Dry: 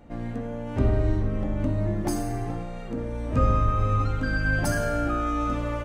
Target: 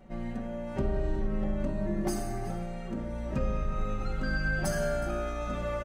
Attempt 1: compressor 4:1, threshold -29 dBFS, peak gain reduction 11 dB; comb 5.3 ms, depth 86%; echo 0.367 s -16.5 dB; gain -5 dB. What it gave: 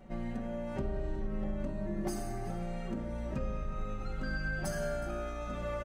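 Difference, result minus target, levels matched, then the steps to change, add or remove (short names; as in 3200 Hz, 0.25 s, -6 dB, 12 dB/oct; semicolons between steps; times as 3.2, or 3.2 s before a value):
compressor: peak gain reduction +6 dB
change: compressor 4:1, threshold -21 dBFS, peak gain reduction 5 dB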